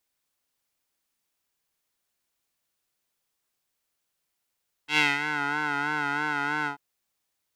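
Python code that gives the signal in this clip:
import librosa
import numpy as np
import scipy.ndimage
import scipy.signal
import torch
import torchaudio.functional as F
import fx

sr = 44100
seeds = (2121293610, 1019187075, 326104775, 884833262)

y = fx.sub_patch_vibrato(sr, seeds[0], note=62, wave='square', wave2='saw', interval_st=-12, detune_cents=16, level2_db=-14.5, sub_db=-1.0, noise_db=-30.0, kind='bandpass', cutoff_hz=1000.0, q=2.4, env_oct=1.5, env_decay_s=0.54, env_sustain_pct=35, attack_ms=100.0, decay_s=0.2, sustain_db=-10, release_s=0.11, note_s=1.78, lfo_hz=3.1, vibrato_cents=57)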